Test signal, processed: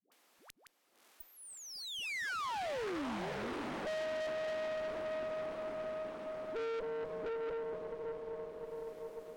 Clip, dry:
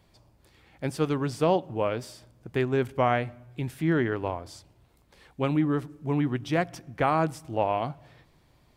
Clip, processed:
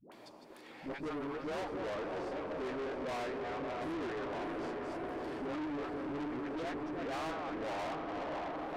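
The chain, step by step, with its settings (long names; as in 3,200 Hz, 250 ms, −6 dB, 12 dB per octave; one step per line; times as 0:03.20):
delay that plays each chunk backwards 233 ms, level −8.5 dB
high-pass filter 240 Hz 24 dB per octave
treble cut that deepens with the level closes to 1,800 Hz, closed at −24.5 dBFS
high-shelf EQ 3,100 Hz −11.5 dB
in parallel at −2.5 dB: upward compression, threshold −25 dBFS
on the sum: all-pass dispersion highs, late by 120 ms, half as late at 500 Hz
on a send: feedback delay with all-pass diffusion 618 ms, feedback 72%, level −6 dB
on the sum: tube saturation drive 30 dB, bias 0.55
level −6.5 dB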